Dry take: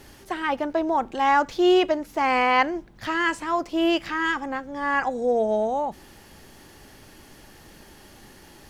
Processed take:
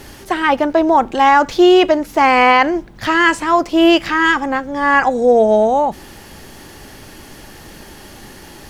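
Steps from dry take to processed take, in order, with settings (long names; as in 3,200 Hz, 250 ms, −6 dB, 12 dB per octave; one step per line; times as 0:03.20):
boost into a limiter +12 dB
level −1 dB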